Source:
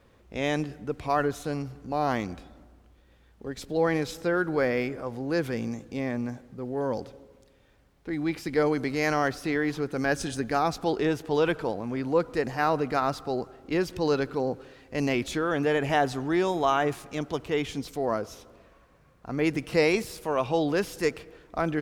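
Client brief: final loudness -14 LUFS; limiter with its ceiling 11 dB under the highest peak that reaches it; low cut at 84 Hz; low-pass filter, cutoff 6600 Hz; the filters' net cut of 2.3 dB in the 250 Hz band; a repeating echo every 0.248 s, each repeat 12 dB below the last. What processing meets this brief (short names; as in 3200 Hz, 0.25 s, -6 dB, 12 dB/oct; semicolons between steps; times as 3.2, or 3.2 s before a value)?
HPF 84 Hz; LPF 6600 Hz; bell 250 Hz -3 dB; limiter -21 dBFS; feedback echo 0.248 s, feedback 25%, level -12 dB; gain +18.5 dB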